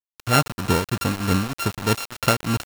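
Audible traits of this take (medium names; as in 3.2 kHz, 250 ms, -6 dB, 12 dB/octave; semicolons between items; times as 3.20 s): a buzz of ramps at a fixed pitch in blocks of 32 samples; tremolo triangle 3.2 Hz, depth 90%; a quantiser's noise floor 6-bit, dither none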